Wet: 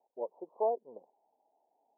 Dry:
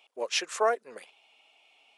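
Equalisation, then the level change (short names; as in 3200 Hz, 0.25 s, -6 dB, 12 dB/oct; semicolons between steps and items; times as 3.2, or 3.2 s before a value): steep low-pass 950 Hz 96 dB/oct; -4.0 dB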